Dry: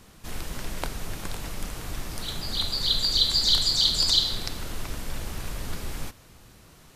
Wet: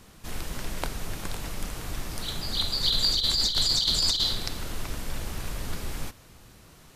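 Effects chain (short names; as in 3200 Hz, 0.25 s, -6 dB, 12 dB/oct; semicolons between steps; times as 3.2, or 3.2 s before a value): 2.83–4.33 negative-ratio compressor -23 dBFS, ratio -0.5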